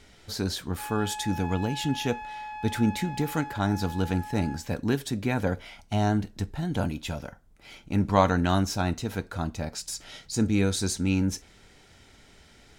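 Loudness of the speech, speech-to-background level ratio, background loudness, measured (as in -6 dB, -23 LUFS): -28.5 LUFS, 10.5 dB, -39.0 LUFS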